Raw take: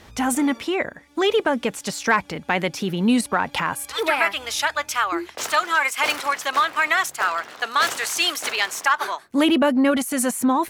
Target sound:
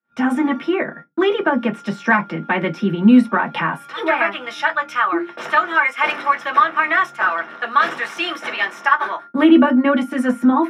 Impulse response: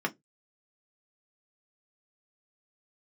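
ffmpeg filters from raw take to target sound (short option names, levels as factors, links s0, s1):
-filter_complex "[0:a]aeval=exprs='val(0)+0.00631*sin(2*PI*1400*n/s)':c=same,agate=range=0.00501:threshold=0.0112:ratio=16:detection=peak,aemphasis=mode=reproduction:type=50fm[s0];[1:a]atrim=start_sample=2205[s1];[s0][s1]afir=irnorm=-1:irlink=0,volume=0.596"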